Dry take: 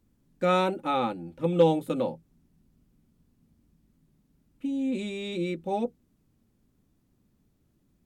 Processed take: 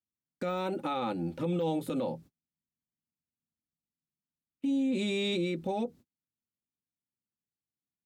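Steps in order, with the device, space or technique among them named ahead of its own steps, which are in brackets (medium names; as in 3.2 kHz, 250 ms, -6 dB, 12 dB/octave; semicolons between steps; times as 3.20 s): broadcast voice chain (high-pass 80 Hz; de-esser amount 100%; compression 3:1, threshold -33 dBFS, peak gain reduction 13 dB; peaking EQ 4.5 kHz +4 dB 0.77 oct; peak limiter -31.5 dBFS, peak gain reduction 11.5 dB); gate -57 dBFS, range -40 dB; trim +7.5 dB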